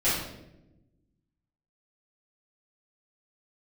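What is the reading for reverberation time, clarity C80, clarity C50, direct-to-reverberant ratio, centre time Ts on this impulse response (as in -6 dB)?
0.90 s, 4.5 dB, 1.0 dB, -12.5 dB, 62 ms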